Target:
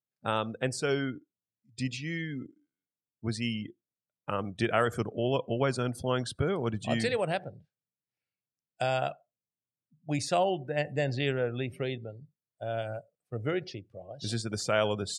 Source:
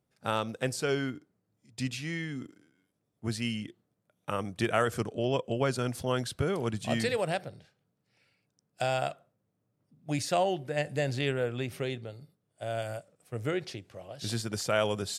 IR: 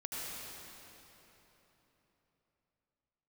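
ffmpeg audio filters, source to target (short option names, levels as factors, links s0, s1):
-filter_complex "[0:a]asplit=2[s0][s1];[1:a]atrim=start_sample=2205,afade=t=out:st=0.15:d=0.01,atrim=end_sample=7056[s2];[s1][s2]afir=irnorm=-1:irlink=0,volume=0.112[s3];[s0][s3]amix=inputs=2:normalize=0,afftdn=nr=25:nf=-45"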